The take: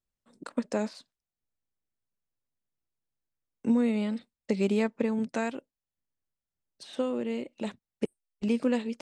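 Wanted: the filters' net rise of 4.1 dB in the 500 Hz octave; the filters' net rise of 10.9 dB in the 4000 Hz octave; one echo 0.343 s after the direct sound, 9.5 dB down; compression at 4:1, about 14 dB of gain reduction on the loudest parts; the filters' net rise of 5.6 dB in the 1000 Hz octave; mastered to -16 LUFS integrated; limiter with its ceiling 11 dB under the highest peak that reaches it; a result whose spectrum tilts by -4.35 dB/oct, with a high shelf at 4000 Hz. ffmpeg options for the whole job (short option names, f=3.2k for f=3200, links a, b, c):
-af "equalizer=f=500:t=o:g=3.5,equalizer=f=1k:t=o:g=5,highshelf=f=4k:g=8.5,equalizer=f=4k:t=o:g=8.5,acompressor=threshold=-37dB:ratio=4,alimiter=level_in=7dB:limit=-24dB:level=0:latency=1,volume=-7dB,aecho=1:1:343:0.335,volume=26.5dB"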